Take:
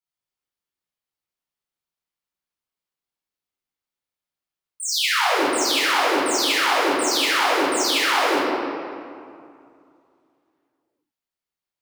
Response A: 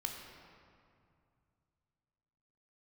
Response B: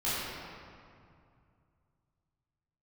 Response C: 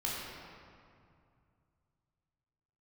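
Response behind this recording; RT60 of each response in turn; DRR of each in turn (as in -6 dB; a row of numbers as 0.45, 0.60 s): B; 2.4, 2.3, 2.4 s; 1.5, -12.0, -5.5 dB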